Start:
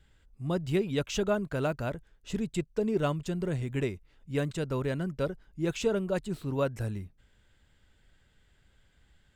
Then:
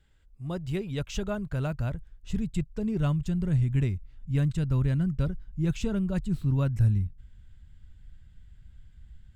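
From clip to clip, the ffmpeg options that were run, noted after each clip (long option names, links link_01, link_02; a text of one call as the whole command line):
ffmpeg -i in.wav -af "asubboost=boost=11:cutoff=140,volume=-3.5dB" out.wav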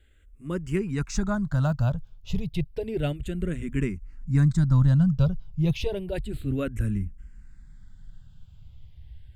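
ffmpeg -i in.wav -filter_complex "[0:a]asplit=2[link_01][link_02];[link_02]afreqshift=-0.31[link_03];[link_01][link_03]amix=inputs=2:normalize=1,volume=7dB" out.wav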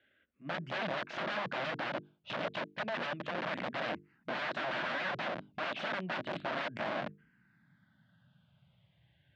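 ffmpeg -i in.wav -af "aeval=exprs='(mod(25.1*val(0)+1,2)-1)/25.1':channel_layout=same,highpass=frequency=150:width=0.5412,highpass=frequency=150:width=1.3066,equalizer=frequency=430:width_type=q:width=4:gain=-7,equalizer=frequency=620:width_type=q:width=4:gain=8,equalizer=frequency=1600:width_type=q:width=4:gain=5,lowpass=frequency=3600:width=0.5412,lowpass=frequency=3600:width=1.3066,bandreject=frequency=50:width_type=h:width=6,bandreject=frequency=100:width_type=h:width=6,bandreject=frequency=150:width_type=h:width=6,bandreject=frequency=200:width_type=h:width=6,bandreject=frequency=250:width_type=h:width=6,bandreject=frequency=300:width_type=h:width=6,bandreject=frequency=350:width_type=h:width=6,bandreject=frequency=400:width_type=h:width=6,bandreject=frequency=450:width_type=h:width=6,volume=-3.5dB" out.wav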